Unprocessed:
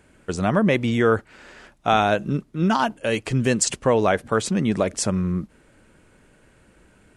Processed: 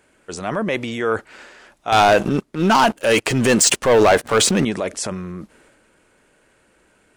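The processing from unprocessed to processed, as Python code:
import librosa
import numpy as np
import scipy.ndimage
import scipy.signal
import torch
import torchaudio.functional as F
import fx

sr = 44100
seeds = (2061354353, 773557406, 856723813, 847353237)

y = fx.bass_treble(x, sr, bass_db=-11, treble_db=1)
y = fx.leveller(y, sr, passes=3, at=(1.92, 4.65))
y = fx.transient(y, sr, attack_db=-4, sustain_db=6)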